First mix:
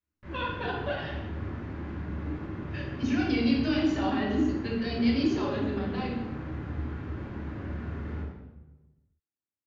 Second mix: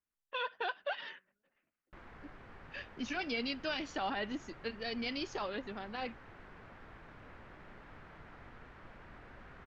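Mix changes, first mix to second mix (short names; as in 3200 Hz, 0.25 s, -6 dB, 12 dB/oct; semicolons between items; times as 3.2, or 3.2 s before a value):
background: entry +1.70 s; reverb: off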